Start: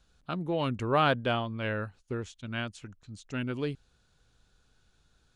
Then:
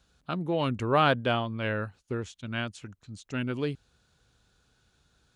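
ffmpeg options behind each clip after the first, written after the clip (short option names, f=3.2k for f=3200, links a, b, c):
-af "highpass=53,volume=2dB"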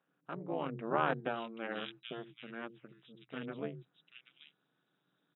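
-filter_complex "[0:a]acrossover=split=160|2700[a][b][c];[a]adelay=70[d];[c]adelay=780[e];[d][b][e]amix=inputs=3:normalize=0,tremolo=f=230:d=0.947,afftfilt=real='re*between(b*sr/4096,120,3900)':imag='im*between(b*sr/4096,120,3900)':win_size=4096:overlap=0.75,volume=-4.5dB"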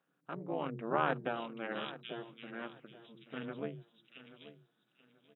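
-af "aecho=1:1:833|1666|2499:0.178|0.0462|0.012"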